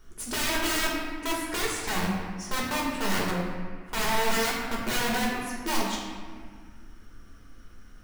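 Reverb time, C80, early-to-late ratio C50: 1.7 s, 2.5 dB, 1.0 dB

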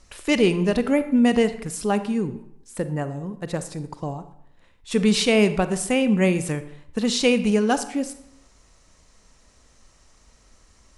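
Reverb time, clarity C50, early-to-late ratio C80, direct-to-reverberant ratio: 0.75 s, 12.5 dB, 15.5 dB, 11.0 dB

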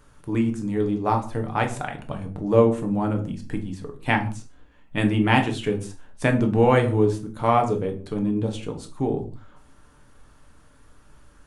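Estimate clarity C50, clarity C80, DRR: 12.0 dB, 16.5 dB, 3.5 dB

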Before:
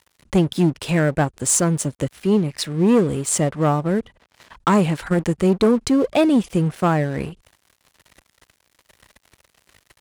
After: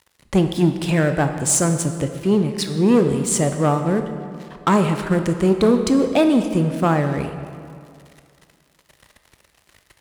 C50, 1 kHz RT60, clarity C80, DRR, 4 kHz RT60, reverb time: 8.0 dB, 2.3 s, 9.0 dB, 7.0 dB, 1.6 s, 2.3 s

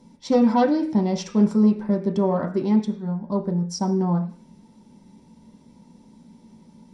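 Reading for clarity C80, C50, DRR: 15.5 dB, 11.0 dB, 1.5 dB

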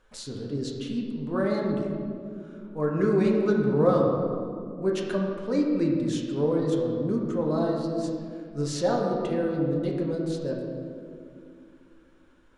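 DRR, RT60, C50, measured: −1.5 dB, 2.3 s, 2.0 dB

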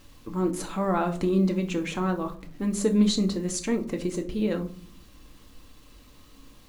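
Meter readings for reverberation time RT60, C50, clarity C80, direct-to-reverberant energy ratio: 0.45 s, 14.5 dB, 19.5 dB, 4.0 dB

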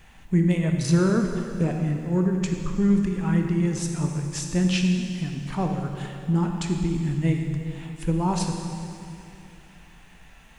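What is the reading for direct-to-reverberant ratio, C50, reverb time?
2.5 dB, 4.0 dB, 2.7 s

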